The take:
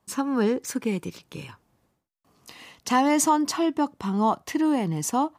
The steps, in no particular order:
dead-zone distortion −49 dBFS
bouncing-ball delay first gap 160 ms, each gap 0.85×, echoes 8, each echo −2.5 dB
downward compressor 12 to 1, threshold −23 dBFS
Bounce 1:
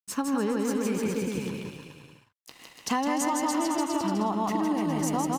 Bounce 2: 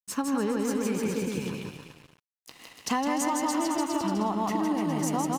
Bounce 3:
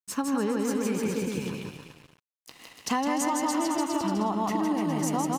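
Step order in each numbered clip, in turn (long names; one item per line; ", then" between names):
dead-zone distortion, then bouncing-ball delay, then downward compressor
bouncing-ball delay, then downward compressor, then dead-zone distortion
bouncing-ball delay, then dead-zone distortion, then downward compressor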